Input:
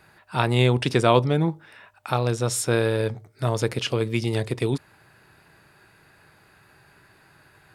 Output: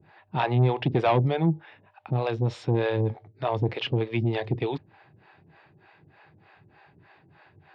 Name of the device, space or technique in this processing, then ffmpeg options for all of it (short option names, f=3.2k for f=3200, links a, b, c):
guitar amplifier with harmonic tremolo: -filter_complex "[0:a]acrossover=split=430[a][b];[a]aeval=exprs='val(0)*(1-1/2+1/2*cos(2*PI*3.3*n/s))':c=same[c];[b]aeval=exprs='val(0)*(1-1/2-1/2*cos(2*PI*3.3*n/s))':c=same[d];[c][d]amix=inputs=2:normalize=0,asoftclip=type=tanh:threshold=-19.5dB,highpass=80,equalizer=f=95:t=q:w=4:g=7,equalizer=f=160:t=q:w=4:g=4,equalizer=f=330:t=q:w=4:g=3,equalizer=f=790:t=q:w=4:g=6,equalizer=f=1.4k:t=q:w=4:g=-6,lowpass=f=3.5k:w=0.5412,lowpass=f=3.5k:w=1.3066,volume=3dB"